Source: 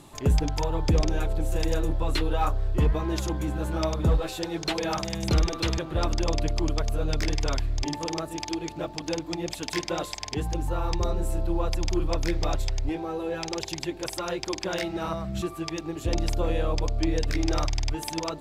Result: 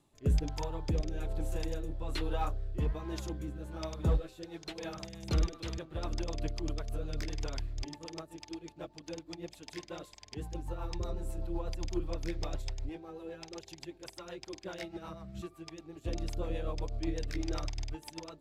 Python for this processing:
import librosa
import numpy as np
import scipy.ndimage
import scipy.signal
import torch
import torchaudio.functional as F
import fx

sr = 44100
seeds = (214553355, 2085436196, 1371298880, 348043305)

y = fx.rotary_switch(x, sr, hz=1.2, then_hz=8.0, switch_at_s=4.33)
y = fx.upward_expand(y, sr, threshold_db=-44.0, expansion=1.5)
y = F.gain(torch.from_numpy(y), -5.0).numpy()